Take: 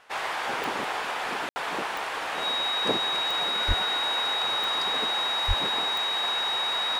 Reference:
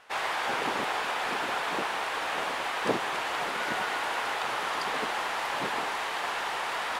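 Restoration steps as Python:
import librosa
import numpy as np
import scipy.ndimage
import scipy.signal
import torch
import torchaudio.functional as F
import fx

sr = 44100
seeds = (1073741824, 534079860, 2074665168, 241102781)

y = fx.fix_declick_ar(x, sr, threshold=10.0)
y = fx.notch(y, sr, hz=3800.0, q=30.0)
y = fx.highpass(y, sr, hz=140.0, slope=24, at=(3.67, 3.79), fade=0.02)
y = fx.highpass(y, sr, hz=140.0, slope=24, at=(5.47, 5.59), fade=0.02)
y = fx.fix_ambience(y, sr, seeds[0], print_start_s=0.0, print_end_s=0.5, start_s=1.49, end_s=1.56)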